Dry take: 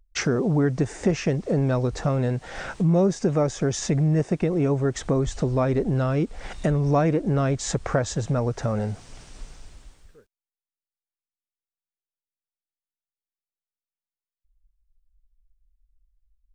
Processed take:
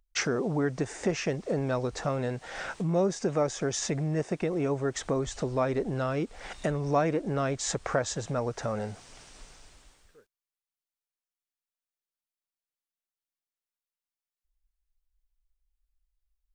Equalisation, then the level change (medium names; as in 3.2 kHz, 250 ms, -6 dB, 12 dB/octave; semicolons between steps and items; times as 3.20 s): bass shelf 270 Hz -11 dB; -1.5 dB